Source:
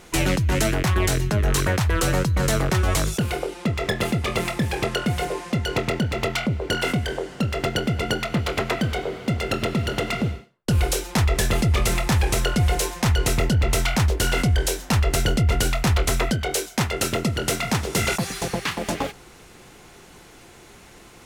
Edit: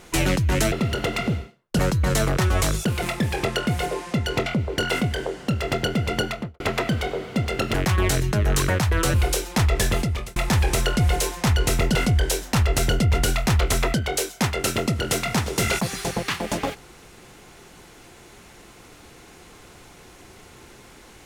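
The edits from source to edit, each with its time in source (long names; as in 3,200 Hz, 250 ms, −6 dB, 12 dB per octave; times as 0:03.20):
0:00.72–0:02.12: swap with 0:09.66–0:10.73
0:03.35–0:04.41: remove
0:05.85–0:06.38: remove
0:08.16–0:08.52: fade out and dull
0:11.48–0:11.95: fade out
0:13.54–0:14.32: remove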